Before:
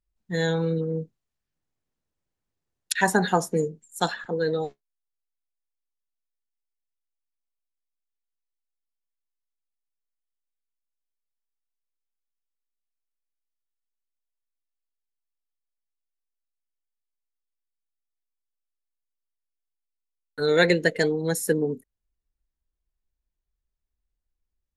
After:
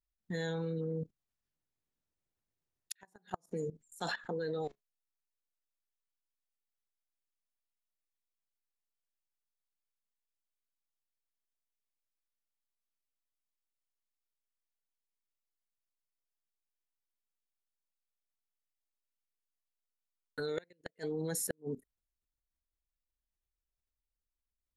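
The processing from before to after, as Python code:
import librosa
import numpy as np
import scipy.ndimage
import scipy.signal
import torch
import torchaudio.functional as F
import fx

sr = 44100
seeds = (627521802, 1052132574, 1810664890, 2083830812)

y = fx.level_steps(x, sr, step_db=18)
y = fx.gate_flip(y, sr, shuts_db=-23.0, range_db=-40)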